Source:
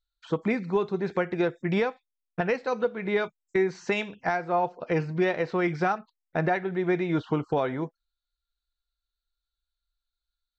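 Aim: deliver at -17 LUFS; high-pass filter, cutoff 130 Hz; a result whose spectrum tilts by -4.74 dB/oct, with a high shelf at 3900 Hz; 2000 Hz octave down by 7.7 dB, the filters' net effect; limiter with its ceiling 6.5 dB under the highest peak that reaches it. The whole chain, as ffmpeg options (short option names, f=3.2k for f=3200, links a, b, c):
-af "highpass=130,equalizer=f=2k:t=o:g=-8,highshelf=f=3.9k:g=-7.5,volume=14.5dB,alimiter=limit=-6dB:level=0:latency=1"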